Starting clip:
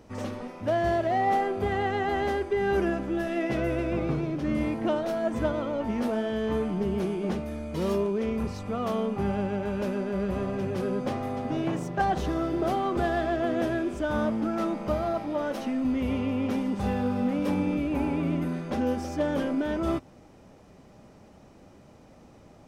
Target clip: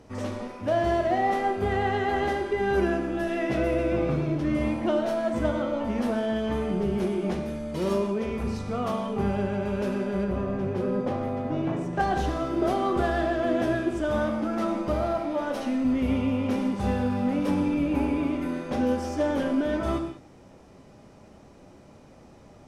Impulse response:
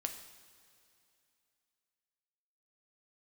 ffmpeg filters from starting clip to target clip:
-filter_complex "[0:a]asettb=1/sr,asplit=3[link_01][link_02][link_03];[link_01]atrim=end=10.244[link_04];[link_02]atrim=start=10.24:end=11.93,asetpts=PTS-STARTPTS,afade=type=in:duration=0.004:curve=qsin,afade=type=out:start_time=1.686:duration=0.004:curve=qsin,highshelf=frequency=2800:gain=-11[link_05];[link_03]atrim=start=11.926[link_06];[link_04][link_05]acrossfade=duration=0.004:curve1=hsin:curve2=qsin[link_07];[link_07][link_06]acrossfade=duration=0.004:curve1=qsin:curve2=hsin[link_08];[1:a]atrim=start_sample=2205,afade=type=out:start_time=0.16:duration=0.01,atrim=end_sample=7497,asetrate=23373,aresample=44100[link_09];[link_08][link_09]afir=irnorm=-1:irlink=0,volume=-1.5dB"

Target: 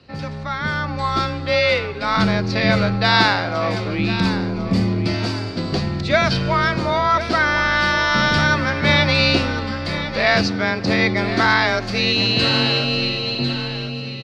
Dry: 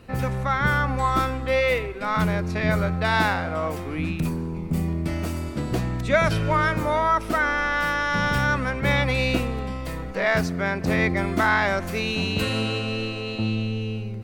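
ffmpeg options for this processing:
ffmpeg -i in.wav -filter_complex "[0:a]afreqshift=24,dynaudnorm=framelen=120:gausssize=17:maxgain=11.5dB,lowpass=frequency=4600:width_type=q:width=4.9,asplit=2[link_01][link_02];[link_02]aecho=0:1:1049|2098|3147|4196:0.266|0.0984|0.0364|0.0135[link_03];[link_01][link_03]amix=inputs=2:normalize=0,volume=-3.5dB" out.wav

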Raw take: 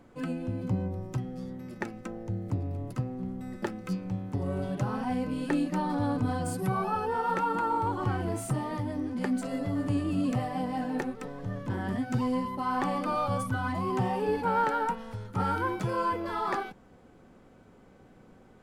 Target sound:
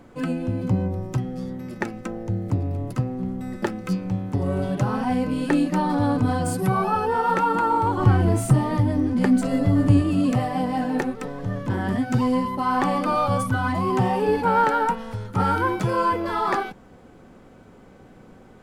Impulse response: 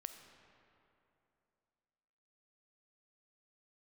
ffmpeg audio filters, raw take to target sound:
-filter_complex "[0:a]asettb=1/sr,asplit=3[link_01][link_02][link_03];[link_01]atrim=end=7.974[link_04];[link_02]atrim=start=7.97:end=10.02,asetpts=PTS-STARTPTS,afade=type=in:duration=0.004:curve=qsin,afade=type=out:start_time=2.046:duration=0.004:curve=qsin,lowshelf=frequency=200:gain=9[link_05];[link_03]atrim=start=10.016[link_06];[link_04][link_05]acrossfade=duration=0.004:curve1=hsin:curve2=qsin[link_07];[link_07][link_06]acrossfade=duration=0.004:curve1=qsin:curve2=hsin,volume=7.5dB"

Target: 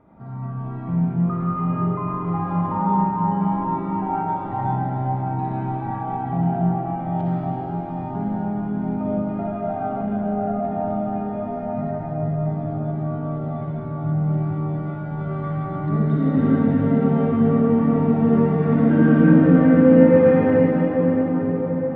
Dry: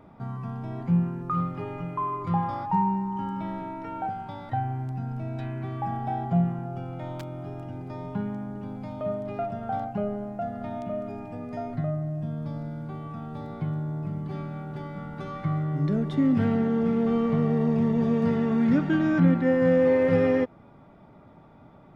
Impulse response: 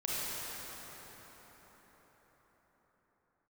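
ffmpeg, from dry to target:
-filter_complex "[0:a]lowpass=2000[link_01];[1:a]atrim=start_sample=2205,asetrate=26901,aresample=44100[link_02];[link_01][link_02]afir=irnorm=-1:irlink=0,volume=-4dB"

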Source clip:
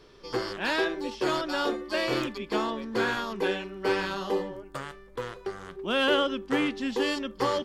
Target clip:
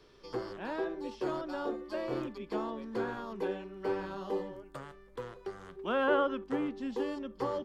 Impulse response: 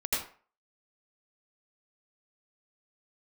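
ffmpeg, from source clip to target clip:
-filter_complex "[0:a]acrossover=split=180|1200[link_01][link_02][link_03];[link_03]acompressor=threshold=-47dB:ratio=5[link_04];[link_01][link_02][link_04]amix=inputs=3:normalize=0,asettb=1/sr,asplit=3[link_05][link_06][link_07];[link_05]atrim=end=5.854[link_08];[link_06]atrim=start=5.85:end=6.44,asetpts=PTS-STARTPTS,afade=type=in:duration=0.004:curve=qsin,afade=type=out:start_time=0.586:duration=0.004:curve=qsin,equalizer=frequency=1500:width=0.55:gain=10[link_09];[link_07]atrim=start=6.436[link_10];[link_08][link_09]acrossfade=duration=0.004:curve1=hsin:curve2=qsin[link_11];[link_11][link_10]acrossfade=duration=0.004:curve1=qsin:curve2=hsin,volume=-6dB"

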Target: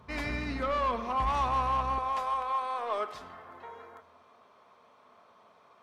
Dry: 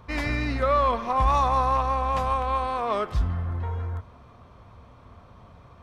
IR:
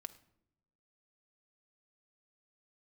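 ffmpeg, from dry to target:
-filter_complex "[0:a]asetnsamples=nb_out_samples=441:pad=0,asendcmd='1.98 highpass f 470',highpass=64,asoftclip=type=tanh:threshold=-18.5dB[link_01];[1:a]atrim=start_sample=2205,asetrate=41013,aresample=44100[link_02];[link_01][link_02]afir=irnorm=-1:irlink=0"

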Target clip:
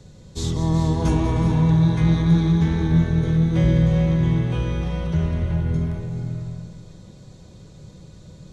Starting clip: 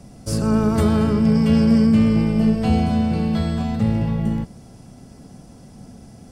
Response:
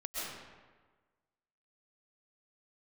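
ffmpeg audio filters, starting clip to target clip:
-filter_complex "[0:a]asplit=2[link_01][link_02];[1:a]atrim=start_sample=2205,adelay=146[link_03];[link_02][link_03]afir=irnorm=-1:irlink=0,volume=-6.5dB[link_04];[link_01][link_04]amix=inputs=2:normalize=0,asetrate=32667,aresample=44100,volume=-2.5dB"

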